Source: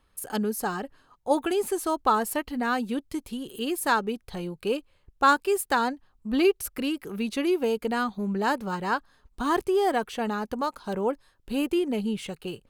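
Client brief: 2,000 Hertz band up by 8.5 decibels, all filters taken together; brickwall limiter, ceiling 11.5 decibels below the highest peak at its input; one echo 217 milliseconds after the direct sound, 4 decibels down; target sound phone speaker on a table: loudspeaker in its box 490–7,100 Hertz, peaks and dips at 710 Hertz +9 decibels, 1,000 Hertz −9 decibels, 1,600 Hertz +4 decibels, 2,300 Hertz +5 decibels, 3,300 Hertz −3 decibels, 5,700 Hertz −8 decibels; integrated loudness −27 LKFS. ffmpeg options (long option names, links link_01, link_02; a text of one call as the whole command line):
ffmpeg -i in.wav -af "equalizer=frequency=2000:width_type=o:gain=7.5,alimiter=limit=-18dB:level=0:latency=1,highpass=frequency=490:width=0.5412,highpass=frequency=490:width=1.3066,equalizer=frequency=710:width_type=q:width=4:gain=9,equalizer=frequency=1000:width_type=q:width=4:gain=-9,equalizer=frequency=1600:width_type=q:width=4:gain=4,equalizer=frequency=2300:width_type=q:width=4:gain=5,equalizer=frequency=3300:width_type=q:width=4:gain=-3,equalizer=frequency=5700:width_type=q:width=4:gain=-8,lowpass=frequency=7100:width=0.5412,lowpass=frequency=7100:width=1.3066,aecho=1:1:217:0.631,volume=1.5dB" out.wav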